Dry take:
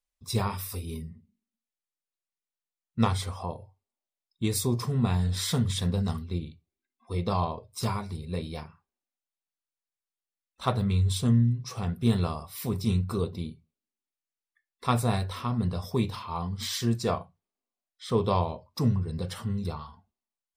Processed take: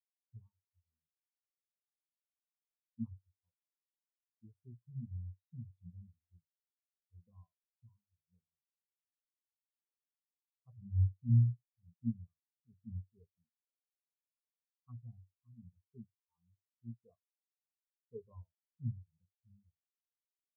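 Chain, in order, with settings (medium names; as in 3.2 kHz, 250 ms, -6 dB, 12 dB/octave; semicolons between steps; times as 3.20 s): spectral contrast expander 4:1; trim -8.5 dB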